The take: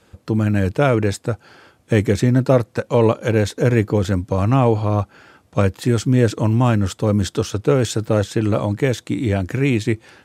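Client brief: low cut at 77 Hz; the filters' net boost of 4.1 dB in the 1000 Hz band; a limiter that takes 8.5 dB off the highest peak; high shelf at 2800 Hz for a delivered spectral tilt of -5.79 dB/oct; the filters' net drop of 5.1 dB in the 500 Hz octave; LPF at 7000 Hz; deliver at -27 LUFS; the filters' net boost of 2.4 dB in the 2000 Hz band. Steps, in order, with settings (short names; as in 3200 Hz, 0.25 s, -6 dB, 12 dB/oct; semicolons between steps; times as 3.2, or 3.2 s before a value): HPF 77 Hz; LPF 7000 Hz; bell 500 Hz -8 dB; bell 1000 Hz +8 dB; bell 2000 Hz +4 dB; high shelf 2800 Hz -8.5 dB; gain -4.5 dB; limiter -14 dBFS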